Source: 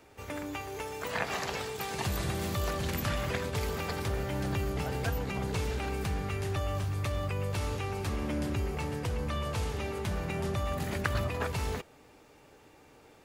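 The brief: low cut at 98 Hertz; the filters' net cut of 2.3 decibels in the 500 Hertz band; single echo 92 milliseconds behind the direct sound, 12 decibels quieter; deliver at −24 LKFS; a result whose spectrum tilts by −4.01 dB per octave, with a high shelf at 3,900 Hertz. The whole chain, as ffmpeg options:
ffmpeg -i in.wav -af "highpass=98,equalizer=frequency=500:width_type=o:gain=-3,highshelf=frequency=3900:gain=8,aecho=1:1:92:0.251,volume=9.5dB" out.wav

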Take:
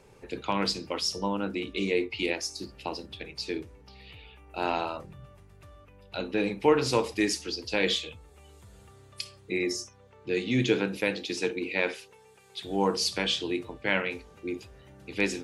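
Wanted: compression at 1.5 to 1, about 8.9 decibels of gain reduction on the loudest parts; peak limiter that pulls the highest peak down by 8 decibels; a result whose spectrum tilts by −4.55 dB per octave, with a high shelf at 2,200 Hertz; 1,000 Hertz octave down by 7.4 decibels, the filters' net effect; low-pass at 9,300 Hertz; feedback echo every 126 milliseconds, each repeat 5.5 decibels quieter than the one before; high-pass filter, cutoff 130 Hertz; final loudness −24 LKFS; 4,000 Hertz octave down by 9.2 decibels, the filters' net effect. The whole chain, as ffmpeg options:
ffmpeg -i in.wav -af "highpass=130,lowpass=9300,equalizer=frequency=1000:width_type=o:gain=-8,highshelf=frequency=2200:gain=-5.5,equalizer=frequency=4000:width_type=o:gain=-6,acompressor=threshold=-43dB:ratio=1.5,alimiter=level_in=5dB:limit=-24dB:level=0:latency=1,volume=-5dB,aecho=1:1:126|252|378|504|630|756|882:0.531|0.281|0.149|0.079|0.0419|0.0222|0.0118,volume=16dB" out.wav

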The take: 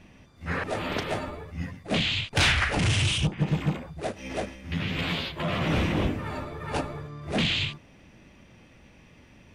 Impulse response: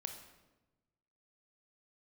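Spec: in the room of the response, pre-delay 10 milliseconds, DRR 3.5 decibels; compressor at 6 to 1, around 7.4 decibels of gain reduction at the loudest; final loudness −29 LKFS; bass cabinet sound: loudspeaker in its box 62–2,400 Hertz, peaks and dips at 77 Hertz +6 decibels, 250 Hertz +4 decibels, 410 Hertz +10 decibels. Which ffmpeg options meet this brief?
-filter_complex "[0:a]acompressor=threshold=-28dB:ratio=6,asplit=2[link_01][link_02];[1:a]atrim=start_sample=2205,adelay=10[link_03];[link_02][link_03]afir=irnorm=-1:irlink=0,volume=-1dB[link_04];[link_01][link_04]amix=inputs=2:normalize=0,highpass=frequency=62:width=0.5412,highpass=frequency=62:width=1.3066,equalizer=frequency=77:width_type=q:width=4:gain=6,equalizer=frequency=250:width_type=q:width=4:gain=4,equalizer=frequency=410:width_type=q:width=4:gain=10,lowpass=frequency=2400:width=0.5412,lowpass=frequency=2400:width=1.3066,volume=1.5dB"

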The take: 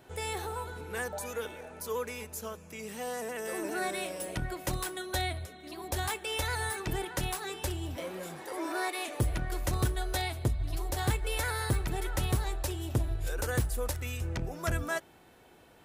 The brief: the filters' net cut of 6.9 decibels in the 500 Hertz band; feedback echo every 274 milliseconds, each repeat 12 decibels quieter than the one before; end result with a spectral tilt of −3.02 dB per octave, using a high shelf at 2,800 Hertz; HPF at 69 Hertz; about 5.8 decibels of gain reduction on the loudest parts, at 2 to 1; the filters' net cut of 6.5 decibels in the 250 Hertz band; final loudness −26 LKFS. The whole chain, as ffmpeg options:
ffmpeg -i in.wav -af "highpass=69,equalizer=frequency=250:width_type=o:gain=-7.5,equalizer=frequency=500:width_type=o:gain=-6.5,highshelf=frequency=2800:gain=3.5,acompressor=threshold=-36dB:ratio=2,aecho=1:1:274|548|822:0.251|0.0628|0.0157,volume=12dB" out.wav

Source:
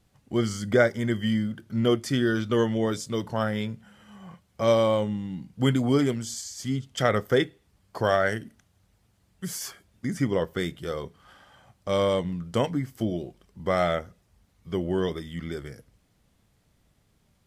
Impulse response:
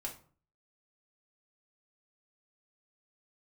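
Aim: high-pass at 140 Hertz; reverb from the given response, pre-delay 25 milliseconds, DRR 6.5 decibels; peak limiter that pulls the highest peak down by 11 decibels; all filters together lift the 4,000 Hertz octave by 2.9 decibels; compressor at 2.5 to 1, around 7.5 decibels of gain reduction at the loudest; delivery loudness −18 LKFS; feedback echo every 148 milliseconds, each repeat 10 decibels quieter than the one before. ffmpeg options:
-filter_complex "[0:a]highpass=140,equalizer=frequency=4000:width_type=o:gain=4,acompressor=threshold=-27dB:ratio=2.5,alimiter=level_in=1.5dB:limit=-24dB:level=0:latency=1,volume=-1.5dB,aecho=1:1:148|296|444|592:0.316|0.101|0.0324|0.0104,asplit=2[link_01][link_02];[1:a]atrim=start_sample=2205,adelay=25[link_03];[link_02][link_03]afir=irnorm=-1:irlink=0,volume=-5.5dB[link_04];[link_01][link_04]amix=inputs=2:normalize=0,volume=17dB"

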